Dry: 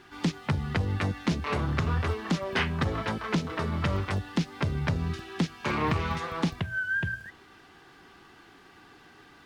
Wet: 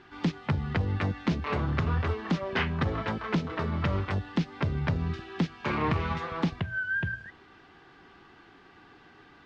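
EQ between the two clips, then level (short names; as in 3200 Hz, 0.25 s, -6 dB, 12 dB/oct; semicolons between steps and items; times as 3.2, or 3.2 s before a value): air absorption 140 m; 0.0 dB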